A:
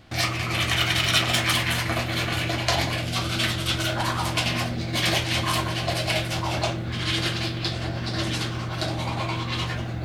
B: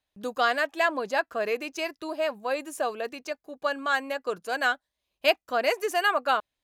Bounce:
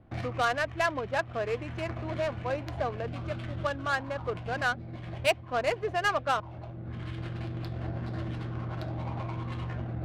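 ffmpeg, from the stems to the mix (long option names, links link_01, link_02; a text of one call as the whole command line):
ffmpeg -i stem1.wav -i stem2.wav -filter_complex "[0:a]acrossover=split=150[link_01][link_02];[link_02]acompressor=threshold=-30dB:ratio=6[link_03];[link_01][link_03]amix=inputs=2:normalize=0,volume=-4dB[link_04];[1:a]volume=-3dB,asplit=2[link_05][link_06];[link_06]apad=whole_len=442893[link_07];[link_04][link_07]sidechaincompress=threshold=-29dB:ratio=10:attack=11:release=1320[link_08];[link_08][link_05]amix=inputs=2:normalize=0,adynamicsmooth=sensitivity=2.5:basefreq=990" out.wav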